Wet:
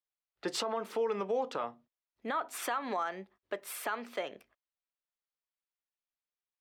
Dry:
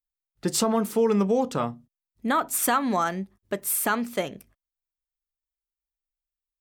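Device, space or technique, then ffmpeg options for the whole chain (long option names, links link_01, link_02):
DJ mixer with the lows and highs turned down: -filter_complex "[0:a]acrossover=split=370 4400:gain=0.0794 1 0.112[link_01][link_02][link_03];[link_01][link_02][link_03]amix=inputs=3:normalize=0,alimiter=limit=-24dB:level=0:latency=1:release=173"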